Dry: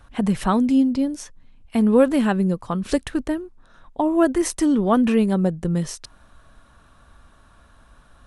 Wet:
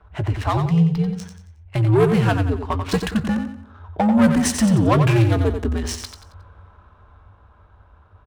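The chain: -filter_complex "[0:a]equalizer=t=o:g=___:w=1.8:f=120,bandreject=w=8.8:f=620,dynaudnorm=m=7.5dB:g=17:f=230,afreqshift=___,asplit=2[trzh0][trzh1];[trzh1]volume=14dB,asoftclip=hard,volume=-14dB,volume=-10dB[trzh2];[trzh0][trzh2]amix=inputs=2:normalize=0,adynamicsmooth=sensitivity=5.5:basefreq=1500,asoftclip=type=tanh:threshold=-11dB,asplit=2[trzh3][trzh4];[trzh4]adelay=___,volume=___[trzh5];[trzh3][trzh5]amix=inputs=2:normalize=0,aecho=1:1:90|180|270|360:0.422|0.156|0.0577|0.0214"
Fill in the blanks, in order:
-9, -100, 18, -13.5dB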